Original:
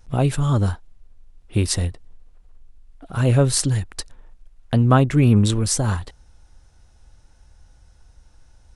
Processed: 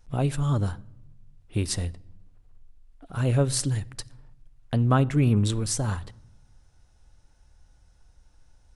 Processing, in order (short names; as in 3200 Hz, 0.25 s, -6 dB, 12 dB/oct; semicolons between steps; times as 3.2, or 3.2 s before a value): shoebox room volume 3200 m³, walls furnished, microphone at 0.35 m; gain -6.5 dB